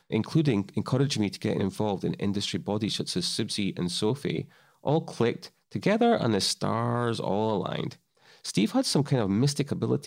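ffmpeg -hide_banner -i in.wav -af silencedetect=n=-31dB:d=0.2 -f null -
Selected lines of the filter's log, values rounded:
silence_start: 4.41
silence_end: 4.86 | silence_duration: 0.44
silence_start: 5.45
silence_end: 5.75 | silence_duration: 0.30
silence_start: 7.91
silence_end: 8.45 | silence_duration: 0.54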